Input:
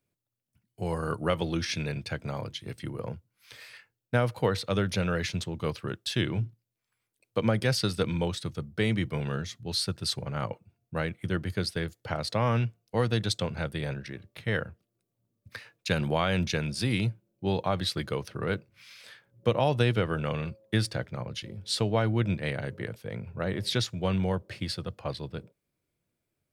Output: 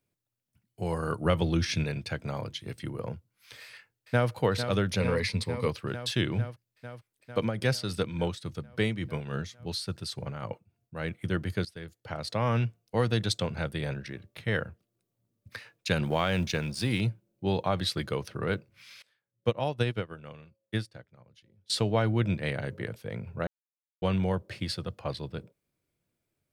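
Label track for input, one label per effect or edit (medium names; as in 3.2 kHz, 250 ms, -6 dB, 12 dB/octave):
1.250000	1.840000	bass shelf 150 Hz +9.5 dB
3.610000	4.310000	echo throw 450 ms, feedback 80%, level -8.5 dB
5.000000	5.680000	rippled EQ curve crests per octave 0.92, crest to trough 11 dB
7.390000	11.080000	tremolo 3.5 Hz, depth 60%
11.650000	12.630000	fade in, from -15.5 dB
16.050000	17.010000	companding laws mixed up coded by A
19.020000	21.700000	upward expansion 2.5:1, over -35 dBFS
23.470000	24.020000	mute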